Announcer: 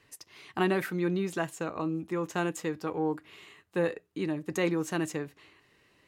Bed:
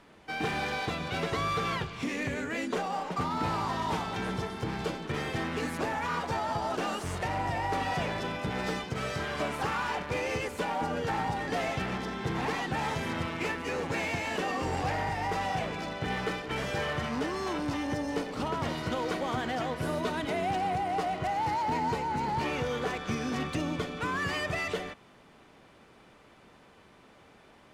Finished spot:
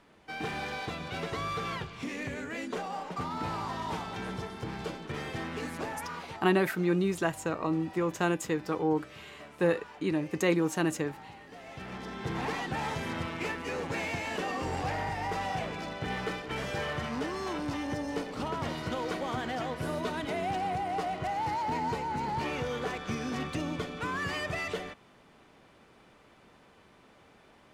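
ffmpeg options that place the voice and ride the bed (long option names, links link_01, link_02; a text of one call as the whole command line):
ffmpeg -i stem1.wav -i stem2.wav -filter_complex "[0:a]adelay=5850,volume=2dB[link_01];[1:a]volume=11.5dB,afade=type=out:start_time=5.8:duration=0.71:silence=0.211349,afade=type=in:start_time=11.63:duration=0.7:silence=0.16788[link_02];[link_01][link_02]amix=inputs=2:normalize=0" out.wav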